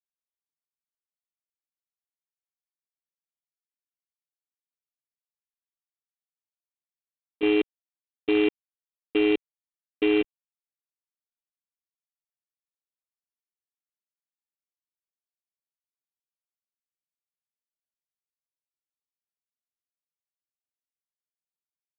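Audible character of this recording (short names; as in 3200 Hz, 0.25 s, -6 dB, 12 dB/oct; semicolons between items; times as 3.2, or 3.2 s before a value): a buzz of ramps at a fixed pitch in blocks of 16 samples; chopped level 3.5 Hz, depth 60%, duty 75%; G.726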